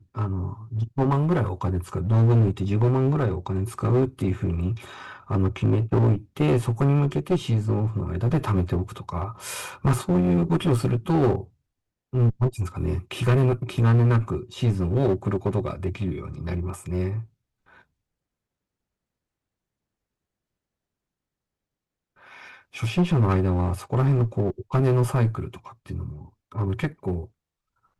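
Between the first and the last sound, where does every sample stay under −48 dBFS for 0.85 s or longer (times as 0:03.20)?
0:17.82–0:22.19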